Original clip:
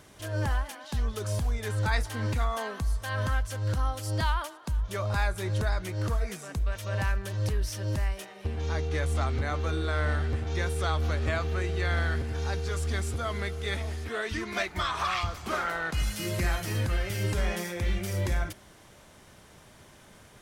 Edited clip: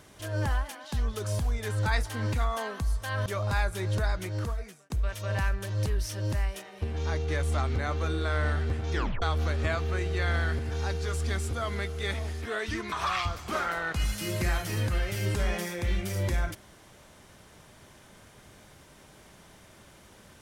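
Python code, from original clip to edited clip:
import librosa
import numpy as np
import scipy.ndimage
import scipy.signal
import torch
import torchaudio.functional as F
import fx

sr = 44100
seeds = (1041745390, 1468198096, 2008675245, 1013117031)

y = fx.edit(x, sr, fx.cut(start_s=3.26, length_s=1.63),
    fx.fade_out_span(start_s=5.91, length_s=0.62),
    fx.tape_stop(start_s=10.57, length_s=0.28),
    fx.cut(start_s=14.55, length_s=0.35), tone=tone)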